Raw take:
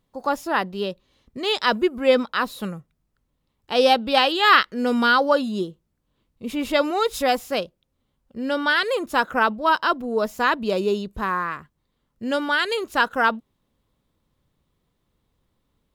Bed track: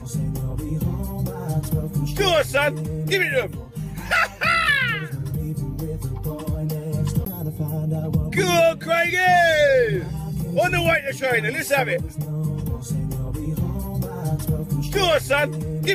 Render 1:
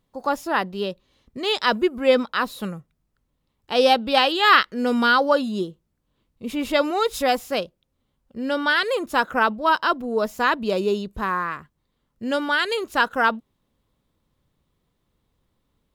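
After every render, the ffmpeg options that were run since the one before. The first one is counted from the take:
-af anull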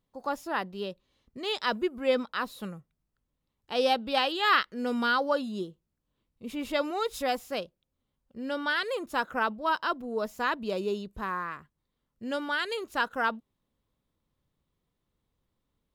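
-af "volume=0.376"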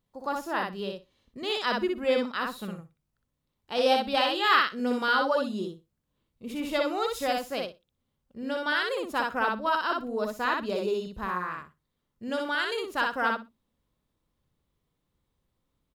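-af "aecho=1:1:61|122|183:0.708|0.106|0.0159"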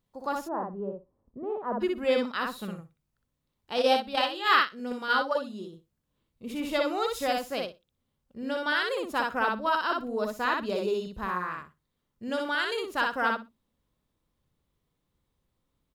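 -filter_complex "[0:a]asplit=3[s0][s1][s2];[s0]afade=t=out:st=0.47:d=0.02[s3];[s1]lowpass=f=1000:w=0.5412,lowpass=f=1000:w=1.3066,afade=t=in:st=0.47:d=0.02,afade=t=out:st=1.8:d=0.02[s4];[s2]afade=t=in:st=1.8:d=0.02[s5];[s3][s4][s5]amix=inputs=3:normalize=0,asplit=3[s6][s7][s8];[s6]afade=t=out:st=3.79:d=0.02[s9];[s7]agate=range=0.447:threshold=0.0562:ratio=16:release=100:detection=peak,afade=t=in:st=3.79:d=0.02,afade=t=out:st=5.72:d=0.02[s10];[s8]afade=t=in:st=5.72:d=0.02[s11];[s9][s10][s11]amix=inputs=3:normalize=0"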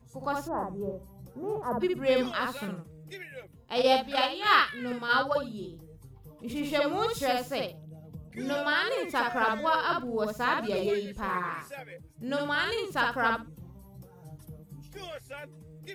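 -filter_complex "[1:a]volume=0.0708[s0];[0:a][s0]amix=inputs=2:normalize=0"

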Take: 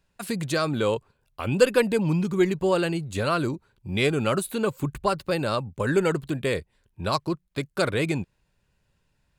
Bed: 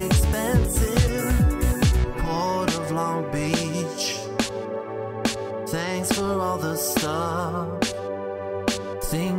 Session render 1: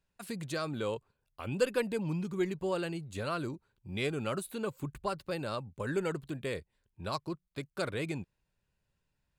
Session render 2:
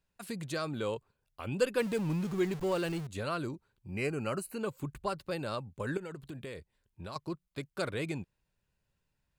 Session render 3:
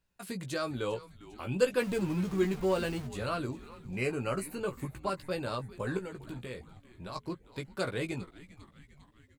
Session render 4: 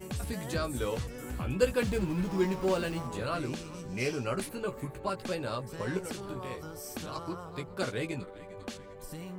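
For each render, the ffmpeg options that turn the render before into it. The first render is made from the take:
-af "volume=0.299"
-filter_complex "[0:a]asettb=1/sr,asplit=3[s0][s1][s2];[s0]atrim=end=1.794[s3];[s1]atrim=start=1.79:end=3.07,asetpts=PTS-STARTPTS,afade=t=in:d=0.004:c=qsin,afade=t=out:st=1.276:d=0.004:c=qsin,aeval=exprs='val(0)+0.5*0.0112*sgn(val(0))':c=same[s4];[s2]atrim=start=3.066[s5];[s3][s4]acrossfade=d=0.004:c1=hsin:c2=qsin[s6];[s6][s5]acrossfade=d=0.004:c1=qsin:c2=hsin,asettb=1/sr,asplit=3[s7][s8][s9];[s7]atrim=end=3.904[s10];[s8]atrim=start=3.9:end=4.61,asetpts=PTS-STARTPTS,afade=t=in:d=0.004:c=qsin,afade=t=out:st=0.706:d=0.004:c=qsin,asuperstop=centerf=3500:order=8:qfactor=3.3[s11];[s9]atrim=start=4.606[s12];[s10][s11]acrossfade=d=0.004:c1=hsin:c2=qsin[s13];[s13][s12]acrossfade=d=0.004:c1=qsin:c2=hsin,asettb=1/sr,asplit=3[s14][s15][s16];[s14]atrim=end=5.974[s17];[s15]atrim=start=5.97:end=7.16,asetpts=PTS-STARTPTS,afade=t=in:d=0.004:c=qsin,afade=t=out:st=1.186:d=0.004:c=qsin,acompressor=threshold=0.0126:ratio=12:attack=3.2:release=140:knee=1:detection=peak[s18];[s16]atrim=start=7.156[s19];[s17][s18]acrossfade=d=0.004:c1=hsin:c2=qsin[s20];[s20][s19]acrossfade=d=0.004:c1=qsin:c2=hsin"
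-filter_complex "[0:a]asplit=2[s0][s1];[s1]adelay=16,volume=0.531[s2];[s0][s2]amix=inputs=2:normalize=0,asplit=6[s3][s4][s5][s6][s7][s8];[s4]adelay=401,afreqshift=-140,volume=0.133[s9];[s5]adelay=802,afreqshift=-280,volume=0.0785[s10];[s6]adelay=1203,afreqshift=-420,volume=0.0462[s11];[s7]adelay=1604,afreqshift=-560,volume=0.0275[s12];[s8]adelay=2005,afreqshift=-700,volume=0.0162[s13];[s3][s9][s10][s11][s12][s13]amix=inputs=6:normalize=0"
-filter_complex "[1:a]volume=0.133[s0];[0:a][s0]amix=inputs=2:normalize=0"

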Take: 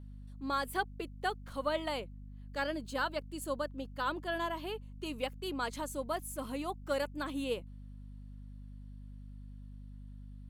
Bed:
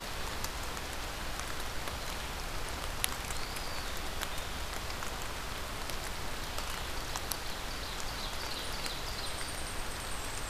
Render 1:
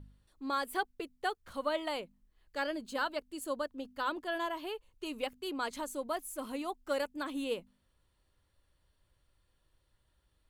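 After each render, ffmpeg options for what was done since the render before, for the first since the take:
-af "bandreject=f=50:t=h:w=4,bandreject=f=100:t=h:w=4,bandreject=f=150:t=h:w=4,bandreject=f=200:t=h:w=4,bandreject=f=250:t=h:w=4"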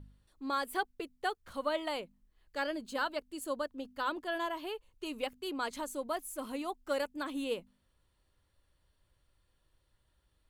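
-af anull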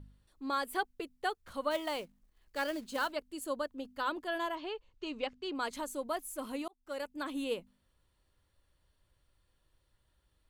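-filter_complex "[0:a]asplit=3[s0][s1][s2];[s0]afade=t=out:st=1.7:d=0.02[s3];[s1]acrusher=bits=4:mode=log:mix=0:aa=0.000001,afade=t=in:st=1.7:d=0.02,afade=t=out:st=3.11:d=0.02[s4];[s2]afade=t=in:st=3.11:d=0.02[s5];[s3][s4][s5]amix=inputs=3:normalize=0,asettb=1/sr,asplit=3[s6][s7][s8];[s6]atrim=end=4.554[s9];[s7]atrim=start=4.55:end=5.55,asetpts=PTS-STARTPTS,afade=t=in:d=0.004:c=qsin,afade=t=out:st=0.996:d=0.004:c=qsin,lowpass=f=6000:w=0.5412,lowpass=f=6000:w=1.3066[s10];[s8]atrim=start=5.546[s11];[s9][s10]acrossfade=d=0.004:c1=hsin:c2=qsin[s12];[s12][s11]acrossfade=d=0.004:c1=qsin:c2=hsin,asplit=2[s13][s14];[s13]atrim=end=6.68,asetpts=PTS-STARTPTS,afade=t=out:st=6.676:d=0.004:c=hsin[s15];[s14]atrim=start=6.68,asetpts=PTS-STARTPTS,afade=t=in:d=0.58[s16];[s15][s16]concat=n=2:v=0:a=1"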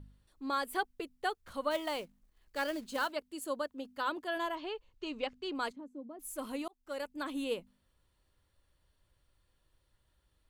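-filter_complex "[0:a]asettb=1/sr,asplit=3[s0][s1][s2];[s0]atrim=end=3.044[s3];[s1]atrim=start=3.04:end=4.37,asetpts=PTS-STARTPTS,afade=t=in:d=0.004:c=qsin,afade=t=out:st=1.326:d=0.004:c=qsin,highpass=f=120:p=1[s4];[s2]atrim=start=4.366[s5];[s3][s4]acrossfade=d=0.004:c1=hsin:c2=qsin[s6];[s6][s5]acrossfade=d=0.004:c1=qsin:c2=hsin,asplit=3[s7][s8][s9];[s7]afade=t=out:st=5.71:d=0.02[s10];[s8]bandpass=f=250:t=q:w=2.3,afade=t=in:st=5.71:d=0.02,afade=t=out:st=6.19:d=0.02[s11];[s9]afade=t=in:st=6.19:d=0.02[s12];[s10][s11][s12]amix=inputs=3:normalize=0"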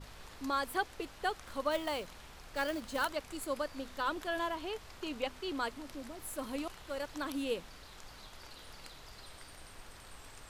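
-filter_complex "[1:a]volume=0.2[s0];[0:a][s0]amix=inputs=2:normalize=0"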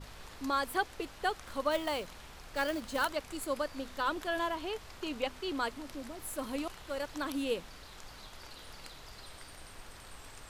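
-af "volume=1.26"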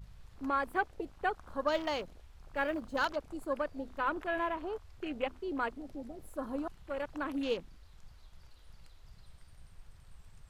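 -af "afwtdn=0.00708"

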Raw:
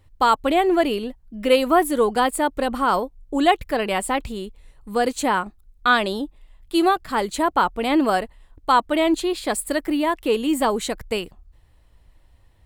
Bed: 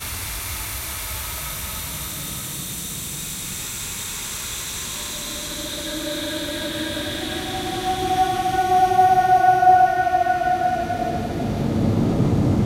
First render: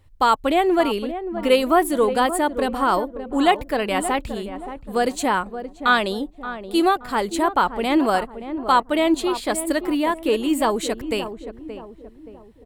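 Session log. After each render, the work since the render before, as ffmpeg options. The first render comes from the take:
-filter_complex "[0:a]asplit=2[s0][s1];[s1]adelay=575,lowpass=f=940:p=1,volume=0.335,asplit=2[s2][s3];[s3]adelay=575,lowpass=f=940:p=1,volume=0.47,asplit=2[s4][s5];[s5]adelay=575,lowpass=f=940:p=1,volume=0.47,asplit=2[s6][s7];[s7]adelay=575,lowpass=f=940:p=1,volume=0.47,asplit=2[s8][s9];[s9]adelay=575,lowpass=f=940:p=1,volume=0.47[s10];[s0][s2][s4][s6][s8][s10]amix=inputs=6:normalize=0"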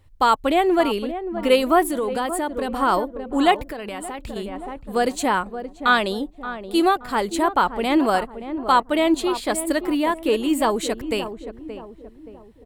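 -filter_complex "[0:a]asettb=1/sr,asplit=3[s0][s1][s2];[s0]atrim=end=1.884[s3];[s1]atrim=start=1.88:end=2.72,asetpts=PTS-STARTPTS,afade=t=in:d=0.004:c=qsin,afade=t=out:st=0.836:d=0.004:c=qsin,acompressor=threshold=0.1:ratio=5:attack=3.2:release=140:knee=1:detection=peak[s4];[s2]atrim=start=2.716[s5];[s3][s4]acrossfade=d=0.004:c1=hsin:c2=qsin[s6];[s6][s5]acrossfade=d=0.004:c1=qsin:c2=hsin,asettb=1/sr,asplit=3[s7][s8][s9];[s7]atrim=end=3.654[s10];[s8]atrim=start=3.65:end=4.36,asetpts=PTS-STARTPTS,afade=t=in:d=0.004:c=qsin,afade=t=out:st=0.706:d=0.004:c=qsin,acompressor=threshold=0.0447:ratio=10:attack=3.2:release=140:knee=1:detection=peak[s11];[s9]atrim=start=4.356[s12];[s10][s11]acrossfade=d=0.004:c1=hsin:c2=qsin[s13];[s13][s12]acrossfade=d=0.004:c1=qsin:c2=hsin"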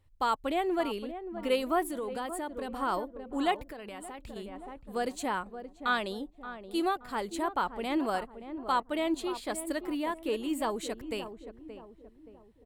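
-af "volume=0.266"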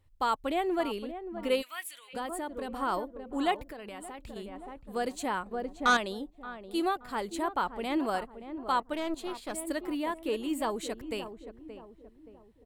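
-filter_complex "[0:a]asplit=3[s0][s1][s2];[s0]afade=t=out:st=1.61:d=0.02[s3];[s1]highpass=f=2500:t=q:w=2.3,afade=t=in:st=1.61:d=0.02,afade=t=out:st=2.13:d=0.02[s4];[s2]afade=t=in:st=2.13:d=0.02[s5];[s3][s4][s5]amix=inputs=3:normalize=0,asettb=1/sr,asplit=3[s6][s7][s8];[s6]atrim=end=5.514[s9];[s7]atrim=start=5.51:end=5.97,asetpts=PTS-STARTPTS,afade=t=in:d=0.004:c=qsin,afade=t=out:st=0.456:d=0.004:c=qsin,aeval=exprs='0.126*sin(PI/2*1.58*val(0)/0.126)':c=same[s10];[s8]atrim=start=5.966[s11];[s9][s10]acrossfade=d=0.004:c1=hsin:c2=qsin[s12];[s12][s11]acrossfade=d=0.004:c1=qsin:c2=hsin,asettb=1/sr,asplit=3[s13][s14][s15];[s13]atrim=end=8.934[s16];[s14]atrim=start=8.93:end=9.54,asetpts=PTS-STARTPTS,afade=t=in:d=0.004:c=qsin,afade=t=out:st=0.606:d=0.004:c=qsin,aeval=exprs='(tanh(22.4*val(0)+0.7)-tanh(0.7))/22.4':c=same[s17];[s15]atrim=start=9.536[s18];[s16][s17]acrossfade=d=0.004:c1=hsin:c2=qsin[s19];[s19][s18]acrossfade=d=0.004:c1=qsin:c2=hsin"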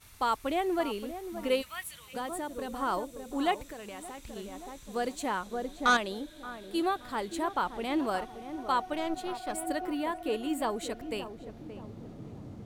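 -filter_complex "[1:a]volume=0.0473[s0];[0:a][s0]amix=inputs=2:normalize=0"

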